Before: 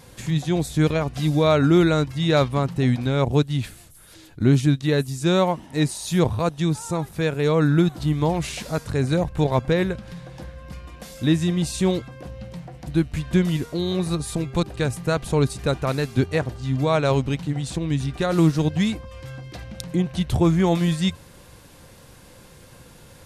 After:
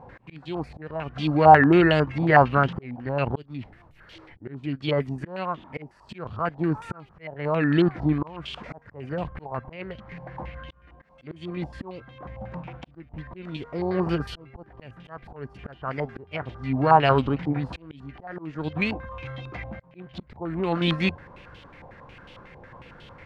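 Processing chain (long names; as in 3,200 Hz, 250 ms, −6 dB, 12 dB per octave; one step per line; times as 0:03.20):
volume swells 694 ms
formants moved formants +3 semitones
low-pass on a step sequencer 11 Hz 830–3,100 Hz
level −1 dB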